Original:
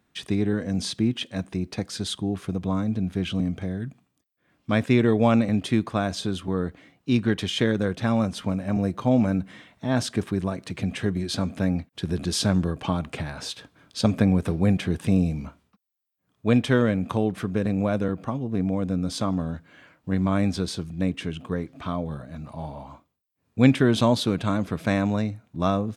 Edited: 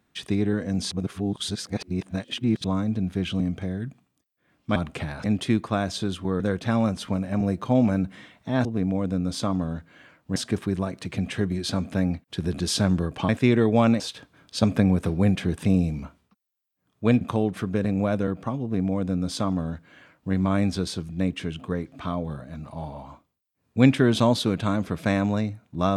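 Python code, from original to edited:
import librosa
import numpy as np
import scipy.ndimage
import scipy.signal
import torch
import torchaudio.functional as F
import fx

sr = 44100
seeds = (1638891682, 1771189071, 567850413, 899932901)

y = fx.edit(x, sr, fx.reverse_span(start_s=0.91, length_s=1.73),
    fx.swap(start_s=4.76, length_s=0.71, other_s=12.94, other_length_s=0.48),
    fx.cut(start_s=6.63, length_s=1.13),
    fx.cut(start_s=16.63, length_s=0.39),
    fx.duplicate(start_s=18.43, length_s=1.71, to_s=10.01), tone=tone)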